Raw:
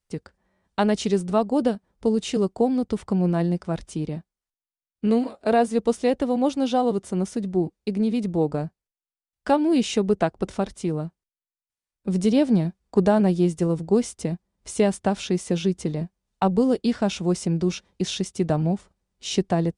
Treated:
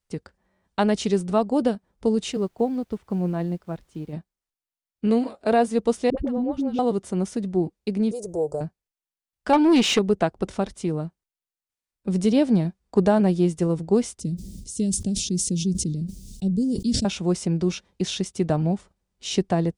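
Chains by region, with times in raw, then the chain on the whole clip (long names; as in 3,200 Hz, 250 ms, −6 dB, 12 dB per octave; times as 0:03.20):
0:02.31–0:04.12: high-shelf EQ 5,300 Hz −10 dB + background noise pink −56 dBFS + expander for the loud parts, over −42 dBFS
0:06.10–0:06.79: spectral tilt −3.5 dB per octave + downward compressor 2.5 to 1, threshold −25 dBFS + all-pass dispersion highs, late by 76 ms, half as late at 460 Hz
0:08.11–0:08.61: drawn EQ curve 130 Hz 0 dB, 250 Hz −19 dB, 360 Hz +4 dB, 550 Hz +9 dB, 1,200 Hz −8 dB, 2,000 Hz −22 dB, 3,800 Hz −12 dB, 6,300 Hz +12 dB + downward compressor 1.5 to 1, threshold −33 dBFS
0:09.53–0:09.99: parametric band 570 Hz −6 dB 0.37 octaves + mid-hump overdrive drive 19 dB, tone 3,100 Hz, clips at −8 dBFS
0:14.20–0:17.05: Chebyshev band-stop filter 230–5,500 Hz + level that may fall only so fast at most 45 dB per second
whole clip: no processing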